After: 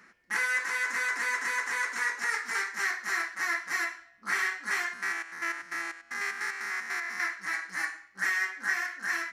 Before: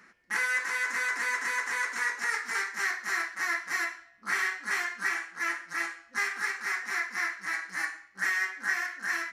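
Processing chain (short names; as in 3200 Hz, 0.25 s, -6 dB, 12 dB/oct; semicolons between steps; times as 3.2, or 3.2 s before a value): 4.93–7.2 stepped spectrum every 0.1 s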